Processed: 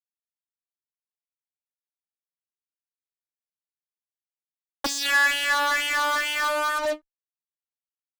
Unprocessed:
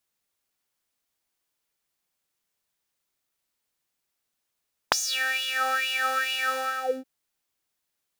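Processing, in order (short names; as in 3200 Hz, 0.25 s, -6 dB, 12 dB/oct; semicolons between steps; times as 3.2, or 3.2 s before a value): vocoder on a gliding note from A#3, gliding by +6 st; Doppler pass-by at 3.72, 10 m/s, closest 4 m; fuzz box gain 51 dB, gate -56 dBFS; small resonant body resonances 1700/4000 Hz, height 9 dB; ending taper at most 430 dB/s; gain -9 dB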